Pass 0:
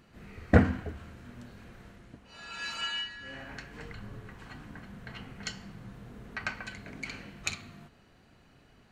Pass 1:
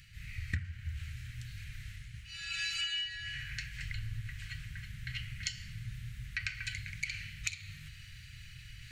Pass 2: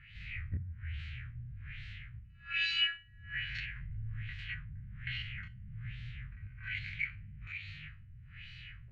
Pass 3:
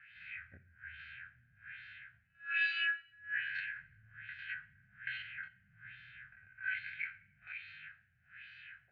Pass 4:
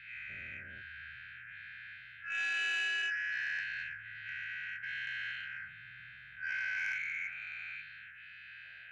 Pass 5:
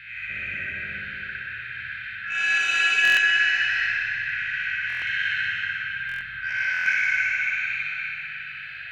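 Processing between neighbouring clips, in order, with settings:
reverse; upward compressor, threshold -44 dBFS; reverse; elliptic band-stop 120–2000 Hz, stop band 50 dB; compressor 20:1, threshold -40 dBFS, peak gain reduction 23 dB; gain +8 dB
stepped spectrum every 50 ms; resonant high shelf 3700 Hz -8 dB, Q 1.5; LFO low-pass sine 1.2 Hz 420–4600 Hz
double band-pass 1100 Hz, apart 1 oct; reverb RT60 0.70 s, pre-delay 3 ms, DRR 17.5 dB; gain +5.5 dB
spectral dilation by 0.48 s; soft clip -23 dBFS, distortion -20 dB; gain -4 dB
on a send: flutter echo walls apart 10.4 m, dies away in 0.85 s; on the sum: digital reverb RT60 2.9 s, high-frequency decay 0.85×, pre-delay 0.1 s, DRR -1.5 dB; stuck buffer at 3.03/4.88/6.07/6.72, samples 1024, times 5; gain +9 dB

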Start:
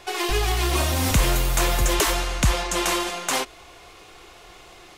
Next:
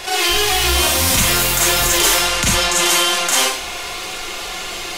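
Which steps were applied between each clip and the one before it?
tilt shelf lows -4.5 dB, about 1500 Hz; Schroeder reverb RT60 0.31 s, combs from 32 ms, DRR -8 dB; fast leveller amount 50%; gain -3.5 dB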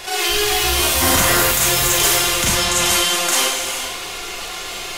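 high shelf 9400 Hz +4 dB; non-linear reverb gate 0.48 s flat, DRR 4 dB; spectral gain 1.02–1.51, 250–2100 Hz +6 dB; gain -3.5 dB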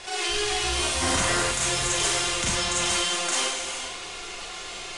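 steep low-pass 10000 Hz 72 dB/oct; gain -8 dB

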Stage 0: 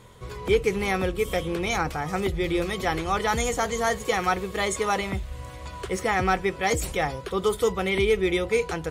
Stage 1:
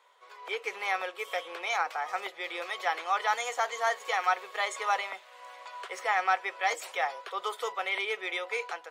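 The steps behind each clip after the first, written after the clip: HPF 650 Hz 24 dB/oct; bell 11000 Hz -13 dB 1.6 oct; AGC gain up to 6 dB; gain -7 dB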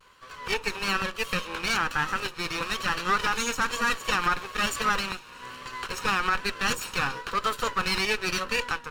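minimum comb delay 0.72 ms; limiter -23.5 dBFS, peak gain reduction 8.5 dB; vibrato 1.1 Hz 62 cents; gain +8.5 dB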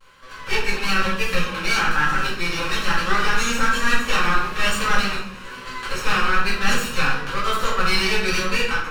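shoebox room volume 140 m³, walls mixed, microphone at 2.2 m; gain -2.5 dB

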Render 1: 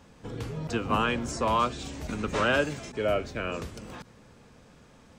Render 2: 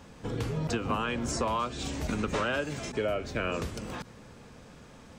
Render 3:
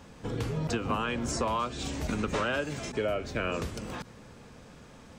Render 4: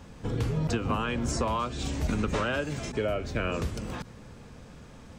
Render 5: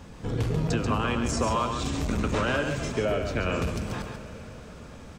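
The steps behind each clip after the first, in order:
compressor 12:1, threshold -30 dBFS, peak gain reduction 11 dB; gain +4 dB
nothing audible
low shelf 150 Hz +7.5 dB
echo 0.138 s -6.5 dB; reverb RT60 5.1 s, pre-delay 58 ms, DRR 12 dB; core saturation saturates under 220 Hz; gain +2.5 dB

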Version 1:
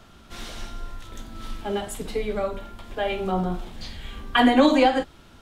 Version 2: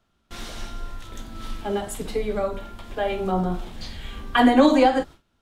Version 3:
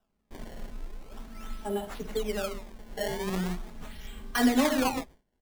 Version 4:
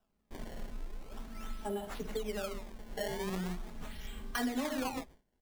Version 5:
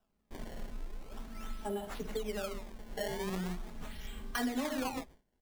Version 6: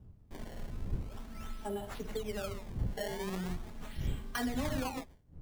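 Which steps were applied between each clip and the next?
gate with hold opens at -37 dBFS; dynamic EQ 2800 Hz, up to -5 dB, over -42 dBFS, Q 1.2; gain +1.5 dB
comb 4.7 ms, depth 60%; decimation with a swept rate 20×, swing 160% 0.42 Hz; gain -9 dB
compressor 3:1, threshold -33 dBFS, peak gain reduction 11 dB; gain -1.5 dB
nothing audible
wind noise 97 Hz -41 dBFS; gain -1 dB

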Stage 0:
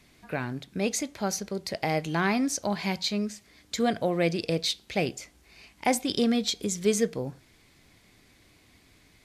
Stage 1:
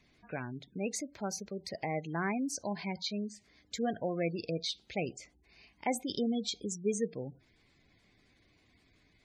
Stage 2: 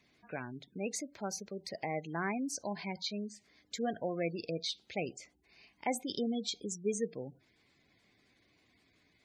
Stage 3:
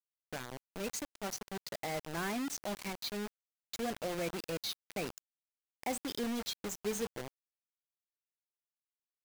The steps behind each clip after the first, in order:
spectral gate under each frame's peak -20 dB strong; gain -7.5 dB
HPF 160 Hz 6 dB/oct; gain -1 dB
zero-crossing step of -41.5 dBFS; bit-crush 6-bit; gain -4 dB

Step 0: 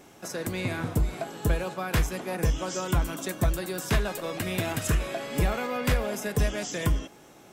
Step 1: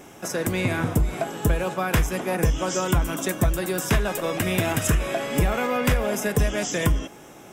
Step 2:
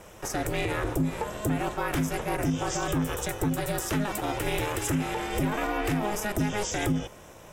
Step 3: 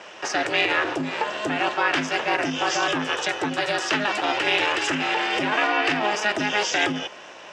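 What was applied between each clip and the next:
bell 4300 Hz -10 dB 0.24 oct; compressor 2.5:1, threshold -25 dBFS, peak gain reduction 4.5 dB; gain +7 dB
limiter -16.5 dBFS, peak gain reduction 7 dB; ring modulator 210 Hz
speaker cabinet 400–5700 Hz, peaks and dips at 480 Hz -5 dB, 1700 Hz +5 dB, 2800 Hz +8 dB, 4600 Hz +5 dB; gain +8 dB

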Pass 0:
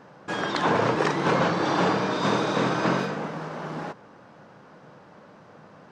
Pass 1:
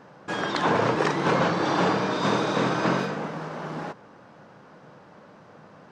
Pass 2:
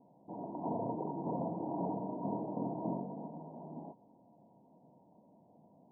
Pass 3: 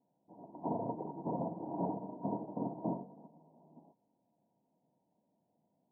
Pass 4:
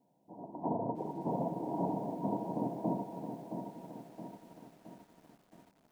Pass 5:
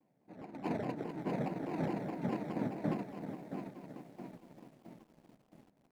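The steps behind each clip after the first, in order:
nothing audible
rippled Chebyshev low-pass 980 Hz, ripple 9 dB; gain -8.5 dB
upward expander 2.5:1, over -46 dBFS; gain +3.5 dB
in parallel at 0 dB: compressor 20:1, threshold -44 dBFS, peak gain reduction 14.5 dB; on the sum: lo-fi delay 0.669 s, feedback 55%, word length 10-bit, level -7.5 dB
median filter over 41 samples; shaped vibrato saw down 4.8 Hz, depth 250 cents

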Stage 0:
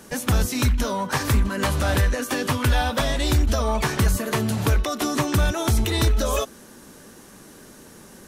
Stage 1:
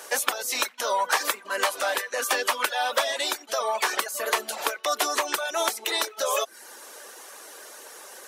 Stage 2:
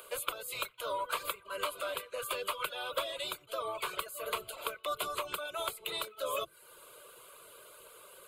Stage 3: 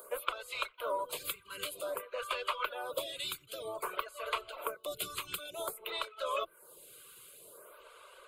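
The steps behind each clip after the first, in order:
compressor 5:1, threshold -24 dBFS, peak gain reduction 8.5 dB; HPF 500 Hz 24 dB/oct; reverb removal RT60 0.56 s; gain +6.5 dB
octaver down 1 oct, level -1 dB; upward compressor, threshold -38 dBFS; fixed phaser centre 1200 Hz, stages 8; gain -8 dB
photocell phaser 0.53 Hz; gain +2.5 dB

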